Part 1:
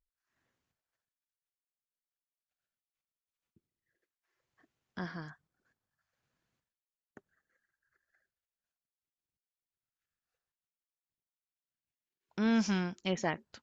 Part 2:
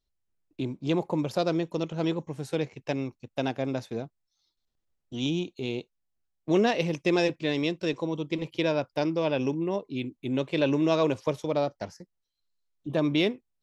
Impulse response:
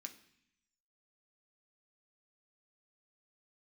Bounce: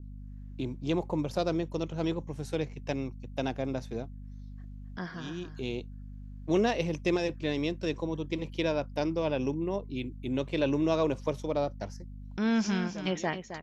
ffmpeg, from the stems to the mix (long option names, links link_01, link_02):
-filter_complex "[0:a]volume=1.5dB,asplit=3[link_01][link_02][link_03];[link_02]volume=-10dB[link_04];[1:a]equalizer=frequency=5900:width=5.6:gain=4,aeval=exprs='val(0)+0.0112*(sin(2*PI*50*n/s)+sin(2*PI*2*50*n/s)/2+sin(2*PI*3*50*n/s)/3+sin(2*PI*4*50*n/s)/4+sin(2*PI*5*50*n/s)/5)':channel_layout=same,adynamicequalizer=threshold=0.0112:dfrequency=1600:dqfactor=0.7:tfrequency=1600:tqfactor=0.7:attack=5:release=100:ratio=0.375:range=2:mode=cutabove:tftype=highshelf,volume=-3dB[link_05];[link_03]apad=whole_len=601009[link_06];[link_05][link_06]sidechaincompress=threshold=-47dB:ratio=6:attack=6:release=390[link_07];[link_04]aecho=0:1:266:1[link_08];[link_01][link_07][link_08]amix=inputs=3:normalize=0"